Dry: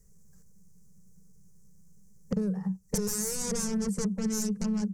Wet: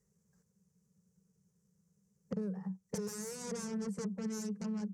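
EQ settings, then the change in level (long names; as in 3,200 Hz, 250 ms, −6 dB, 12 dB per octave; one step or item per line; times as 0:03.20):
high-pass filter 67 Hz
low-pass filter 3,000 Hz 6 dB per octave
low-shelf EQ 120 Hz −11.5 dB
−5.5 dB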